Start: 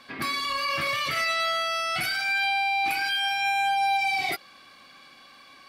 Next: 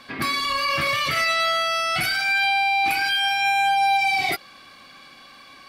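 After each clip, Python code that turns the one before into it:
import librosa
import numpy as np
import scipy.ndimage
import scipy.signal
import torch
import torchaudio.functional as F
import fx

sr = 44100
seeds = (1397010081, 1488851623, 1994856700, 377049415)

y = fx.low_shelf(x, sr, hz=130.0, db=5.5)
y = y * librosa.db_to_amplitude(4.5)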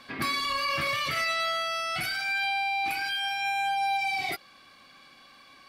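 y = fx.rider(x, sr, range_db=10, speed_s=2.0)
y = y * librosa.db_to_amplitude(-7.5)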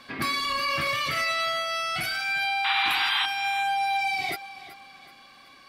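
y = fx.spec_paint(x, sr, seeds[0], shape='noise', start_s=2.64, length_s=0.62, low_hz=730.0, high_hz=4100.0, level_db=-28.0)
y = fx.echo_feedback(y, sr, ms=377, feedback_pct=40, wet_db=-16)
y = y * librosa.db_to_amplitude(1.5)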